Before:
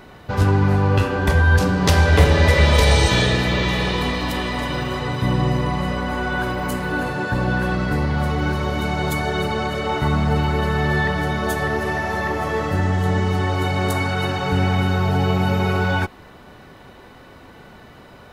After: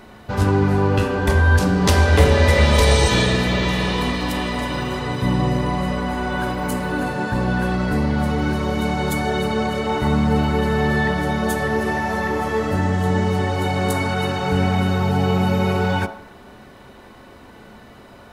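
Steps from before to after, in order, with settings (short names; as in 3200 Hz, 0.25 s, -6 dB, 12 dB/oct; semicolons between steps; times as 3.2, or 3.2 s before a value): bell 9100 Hz +4 dB 0.93 oct; on a send: reverb RT60 0.75 s, pre-delay 3 ms, DRR 8 dB; on the sum: gain -1 dB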